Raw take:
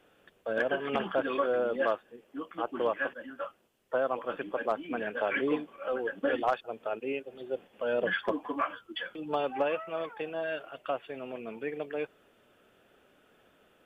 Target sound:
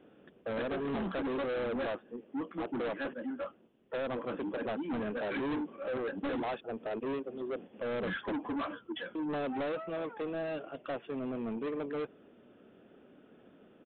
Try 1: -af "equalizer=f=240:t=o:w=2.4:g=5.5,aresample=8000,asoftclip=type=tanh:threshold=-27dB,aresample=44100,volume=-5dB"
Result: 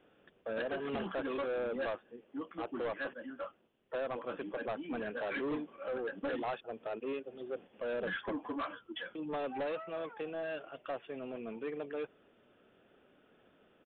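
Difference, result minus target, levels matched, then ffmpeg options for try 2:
250 Hz band -3.0 dB
-af "equalizer=f=240:t=o:w=2.4:g=16.5,aresample=8000,asoftclip=type=tanh:threshold=-27dB,aresample=44100,volume=-5dB"

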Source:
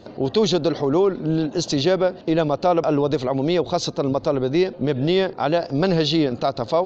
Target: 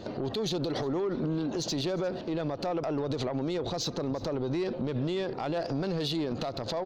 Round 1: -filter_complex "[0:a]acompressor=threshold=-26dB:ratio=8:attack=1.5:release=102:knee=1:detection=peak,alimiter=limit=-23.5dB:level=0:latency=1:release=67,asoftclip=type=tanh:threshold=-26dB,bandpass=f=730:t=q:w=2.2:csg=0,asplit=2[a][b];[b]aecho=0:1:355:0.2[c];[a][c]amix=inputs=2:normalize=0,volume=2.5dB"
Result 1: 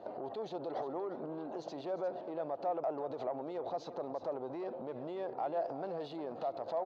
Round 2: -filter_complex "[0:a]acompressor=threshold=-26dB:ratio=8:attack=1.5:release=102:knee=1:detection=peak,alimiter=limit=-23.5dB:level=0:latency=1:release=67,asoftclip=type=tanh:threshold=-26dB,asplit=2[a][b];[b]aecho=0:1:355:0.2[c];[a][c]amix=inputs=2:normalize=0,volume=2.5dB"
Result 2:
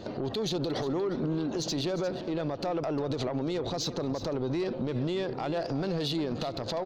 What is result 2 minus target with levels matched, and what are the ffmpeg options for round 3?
echo-to-direct +8.5 dB
-filter_complex "[0:a]acompressor=threshold=-26dB:ratio=8:attack=1.5:release=102:knee=1:detection=peak,alimiter=limit=-23.5dB:level=0:latency=1:release=67,asoftclip=type=tanh:threshold=-26dB,asplit=2[a][b];[b]aecho=0:1:355:0.075[c];[a][c]amix=inputs=2:normalize=0,volume=2.5dB"

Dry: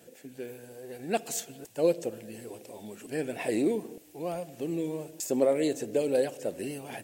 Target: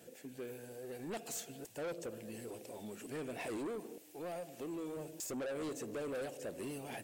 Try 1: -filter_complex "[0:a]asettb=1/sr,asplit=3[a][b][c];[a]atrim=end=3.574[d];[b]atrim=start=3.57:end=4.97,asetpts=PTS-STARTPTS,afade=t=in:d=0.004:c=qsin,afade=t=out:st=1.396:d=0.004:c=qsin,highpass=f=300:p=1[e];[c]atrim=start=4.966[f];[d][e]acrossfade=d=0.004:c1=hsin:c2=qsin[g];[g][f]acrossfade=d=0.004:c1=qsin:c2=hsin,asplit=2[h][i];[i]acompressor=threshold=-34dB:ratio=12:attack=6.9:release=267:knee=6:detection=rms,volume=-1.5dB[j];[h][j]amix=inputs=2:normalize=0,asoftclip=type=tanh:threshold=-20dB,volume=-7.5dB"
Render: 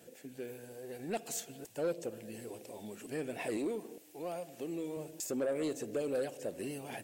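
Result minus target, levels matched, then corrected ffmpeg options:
soft clip: distortion -9 dB
-filter_complex "[0:a]asettb=1/sr,asplit=3[a][b][c];[a]atrim=end=3.574[d];[b]atrim=start=3.57:end=4.97,asetpts=PTS-STARTPTS,afade=t=in:d=0.004:c=qsin,afade=t=out:st=1.396:d=0.004:c=qsin,highpass=f=300:p=1[e];[c]atrim=start=4.966[f];[d][e]acrossfade=d=0.004:c1=hsin:c2=qsin[g];[g][f]acrossfade=d=0.004:c1=qsin:c2=hsin,asplit=2[h][i];[i]acompressor=threshold=-34dB:ratio=12:attack=6.9:release=267:knee=6:detection=rms,volume=-1.5dB[j];[h][j]amix=inputs=2:normalize=0,asoftclip=type=tanh:threshold=-30dB,volume=-7.5dB"

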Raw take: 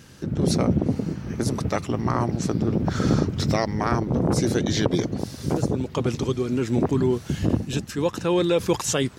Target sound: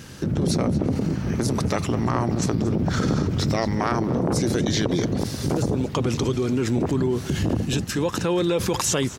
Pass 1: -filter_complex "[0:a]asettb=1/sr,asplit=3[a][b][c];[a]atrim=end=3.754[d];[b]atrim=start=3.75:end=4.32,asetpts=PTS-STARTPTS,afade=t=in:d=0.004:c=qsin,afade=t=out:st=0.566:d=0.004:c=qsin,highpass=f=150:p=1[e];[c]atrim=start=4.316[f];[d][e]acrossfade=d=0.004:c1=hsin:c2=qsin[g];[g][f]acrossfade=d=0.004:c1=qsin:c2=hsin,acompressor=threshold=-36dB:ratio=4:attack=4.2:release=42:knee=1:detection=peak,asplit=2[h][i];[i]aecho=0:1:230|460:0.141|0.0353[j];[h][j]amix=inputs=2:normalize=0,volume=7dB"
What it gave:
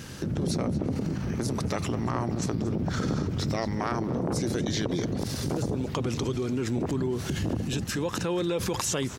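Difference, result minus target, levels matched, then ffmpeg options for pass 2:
compressor: peak gain reduction +6 dB
-filter_complex "[0:a]asettb=1/sr,asplit=3[a][b][c];[a]atrim=end=3.754[d];[b]atrim=start=3.75:end=4.32,asetpts=PTS-STARTPTS,afade=t=in:d=0.004:c=qsin,afade=t=out:st=0.566:d=0.004:c=qsin,highpass=f=150:p=1[e];[c]atrim=start=4.316[f];[d][e]acrossfade=d=0.004:c1=hsin:c2=qsin[g];[g][f]acrossfade=d=0.004:c1=qsin:c2=hsin,acompressor=threshold=-28dB:ratio=4:attack=4.2:release=42:knee=1:detection=peak,asplit=2[h][i];[i]aecho=0:1:230|460:0.141|0.0353[j];[h][j]amix=inputs=2:normalize=0,volume=7dB"

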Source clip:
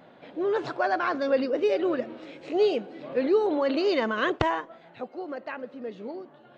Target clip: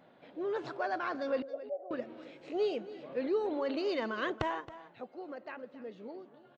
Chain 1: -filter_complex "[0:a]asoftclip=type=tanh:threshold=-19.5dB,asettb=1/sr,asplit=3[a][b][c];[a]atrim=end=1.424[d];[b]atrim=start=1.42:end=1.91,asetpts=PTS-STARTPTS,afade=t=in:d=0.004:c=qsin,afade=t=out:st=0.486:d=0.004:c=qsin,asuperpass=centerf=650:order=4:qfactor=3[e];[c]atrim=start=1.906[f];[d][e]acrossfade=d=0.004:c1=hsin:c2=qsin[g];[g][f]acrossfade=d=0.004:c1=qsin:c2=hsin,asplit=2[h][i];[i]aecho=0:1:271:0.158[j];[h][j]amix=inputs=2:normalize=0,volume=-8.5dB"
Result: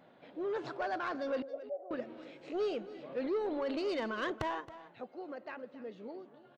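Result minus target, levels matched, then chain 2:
soft clip: distortion +15 dB
-filter_complex "[0:a]asoftclip=type=tanh:threshold=-10dB,asettb=1/sr,asplit=3[a][b][c];[a]atrim=end=1.424[d];[b]atrim=start=1.42:end=1.91,asetpts=PTS-STARTPTS,afade=t=in:d=0.004:c=qsin,afade=t=out:st=0.486:d=0.004:c=qsin,asuperpass=centerf=650:order=4:qfactor=3[e];[c]atrim=start=1.906[f];[d][e]acrossfade=d=0.004:c1=hsin:c2=qsin[g];[g][f]acrossfade=d=0.004:c1=qsin:c2=hsin,asplit=2[h][i];[i]aecho=0:1:271:0.158[j];[h][j]amix=inputs=2:normalize=0,volume=-8.5dB"

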